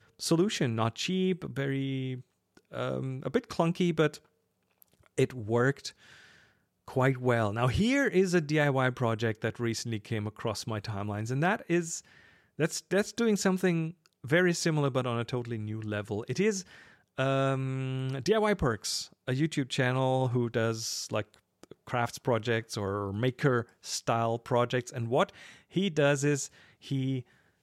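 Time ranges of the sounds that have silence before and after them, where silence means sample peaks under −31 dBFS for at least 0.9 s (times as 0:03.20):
0:05.18–0:05.88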